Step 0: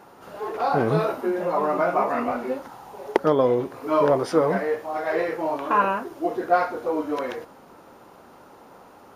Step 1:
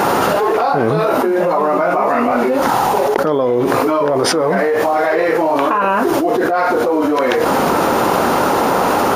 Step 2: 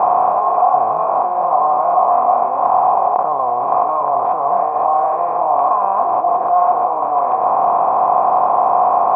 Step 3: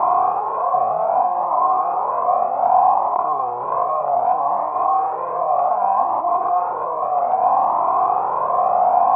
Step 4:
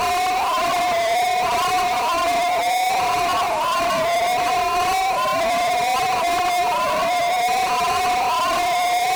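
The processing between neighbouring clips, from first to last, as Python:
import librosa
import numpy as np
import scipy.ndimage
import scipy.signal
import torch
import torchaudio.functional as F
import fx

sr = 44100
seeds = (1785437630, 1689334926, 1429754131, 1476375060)

y1 = fx.low_shelf(x, sr, hz=100.0, db=-7.0)
y1 = fx.env_flatten(y1, sr, amount_pct=100)
y2 = fx.bin_compress(y1, sr, power=0.4)
y2 = fx.formant_cascade(y2, sr, vowel='a')
y2 = fx.peak_eq(y2, sr, hz=320.0, db=-4.5, octaves=1.1)
y2 = F.gain(torch.from_numpy(y2), 4.5).numpy()
y3 = fx.comb_cascade(y2, sr, direction='rising', hz=0.64)
y3 = F.gain(torch.from_numpy(y3), 1.0).numpy()
y4 = fx.sine_speech(y3, sr)
y4 = fx.fuzz(y4, sr, gain_db=36.0, gate_db=-45.0)
y4 = y4 + 10.0 ** (-10.0 / 20.0) * np.pad(y4, (int(341 * sr / 1000.0), 0))[:len(y4)]
y4 = F.gain(torch.from_numpy(y4), -6.0).numpy()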